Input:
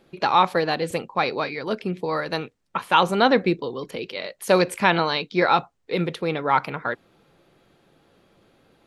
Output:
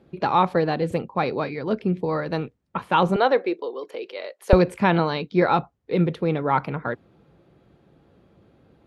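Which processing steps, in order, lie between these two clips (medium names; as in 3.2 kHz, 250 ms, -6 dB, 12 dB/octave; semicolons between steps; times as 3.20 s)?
high-pass 52 Hz 24 dB/octave, from 3.16 s 390 Hz, from 4.53 s 50 Hz; tilt EQ -3 dB/octave; trim -2 dB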